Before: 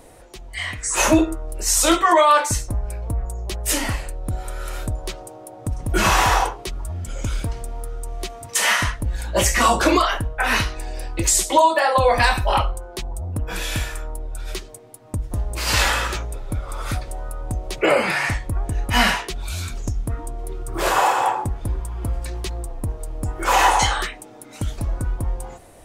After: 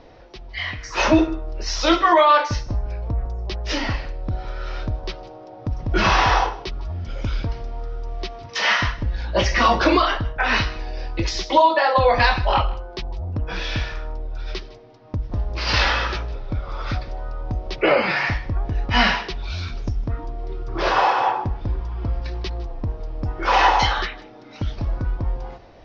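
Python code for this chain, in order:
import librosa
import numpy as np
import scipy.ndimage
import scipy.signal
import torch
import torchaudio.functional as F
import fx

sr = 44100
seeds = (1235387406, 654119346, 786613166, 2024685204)

y = scipy.signal.sosfilt(scipy.signal.butter(12, 5600.0, 'lowpass', fs=sr, output='sos'), x)
y = y + 10.0 ** (-20.0 / 20.0) * np.pad(y, (int(156 * sr / 1000.0), 0))[:len(y)]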